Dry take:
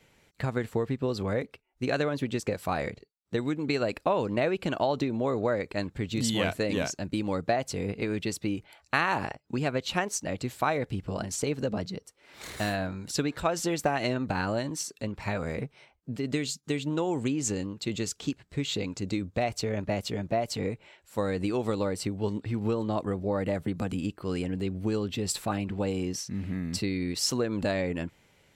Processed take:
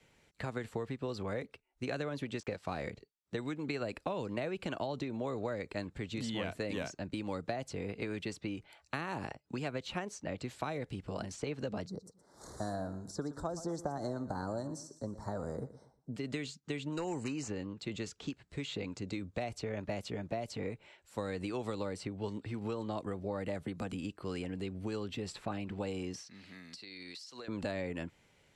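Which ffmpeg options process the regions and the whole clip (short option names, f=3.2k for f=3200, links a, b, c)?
-filter_complex "[0:a]asettb=1/sr,asplit=3[a][b][c];[a]atrim=end=2.404[d];[b]atrim=start=2.4:end=2.83,asetpts=PTS-STARTPTS,afade=t=in:d=0.004:c=qsin,afade=t=out:st=0.426:d=0.004:c=qsin,lowpass=6.4k,aeval=exprs='sgn(val(0))*max(abs(val(0))-0.00188,0)':c=same[e];[c]atrim=start=2.826[f];[d][e]acrossfade=d=0.004:c1=hsin:c2=qsin[g];[g][f]acrossfade=d=0.004:c1=qsin:c2=hsin,asettb=1/sr,asplit=3[h][i][j];[h]atrim=end=11.874[k];[i]atrim=start=11.87:end=16.16,asetpts=PTS-STARTPTS,afade=t=in:d=0.004:c=qsin,afade=t=out:st=4.286:d=0.004:c=qsin,asuperstop=centerf=2600:order=4:qfactor=0.61,aecho=1:1:118|236|354:0.158|0.0475|0.0143,atrim=end_sample=189189[l];[j]atrim=start=16.156[m];[k][l]acrossfade=d=0.004:c1=hsin:c2=qsin[n];[n][m]acrossfade=d=0.004:c1=qsin:c2=hsin,asettb=1/sr,asplit=3[o][p][q];[o]atrim=end=16.924[r];[p]atrim=start=16.92:end=17.48,asetpts=PTS-STARTPTS,afade=t=in:d=0.004:c=qsin,afade=t=out:st=0.556:d=0.004:c=qsin,equalizer=f=7.3k:t=o:w=1.8:g=9,volume=22dB,asoftclip=hard,volume=-22dB,asuperstop=centerf=3400:order=12:qfactor=5.1[s];[q]atrim=start=17.476[t];[r][s]acrossfade=d=0.004:c1=hsin:c2=qsin[u];[u][t]acrossfade=d=0.004:c1=qsin:c2=hsin,asettb=1/sr,asplit=3[v][w][x];[v]atrim=end=26.264[y];[w]atrim=start=26.26:end=27.48,asetpts=PTS-STARTPTS,afade=t=in:d=0.004:c=qsin,afade=t=out:st=1.216:d=0.004:c=qsin,highpass=f=1.4k:p=1,equalizer=f=4.4k:t=o:w=0.62:g=10.5,acompressor=threshold=-36dB:ratio=16:attack=3.2:release=140:knee=1:detection=peak[z];[x]atrim=start=27.476[aa];[y][z]acrossfade=d=0.004:c1=hsin:c2=qsin[ab];[ab][aa]acrossfade=d=0.004:c1=qsin:c2=hsin,lowpass=f=11k:w=0.5412,lowpass=f=11k:w=1.3066,acrossover=split=240|530|2900|7000[ac][ad][ae][af][ag];[ac]acompressor=threshold=-37dB:ratio=4[ah];[ad]acompressor=threshold=-37dB:ratio=4[ai];[ae]acompressor=threshold=-35dB:ratio=4[aj];[af]acompressor=threshold=-47dB:ratio=4[ak];[ag]acompressor=threshold=-58dB:ratio=4[al];[ah][ai][aj][ak][al]amix=inputs=5:normalize=0,volume=-4.5dB"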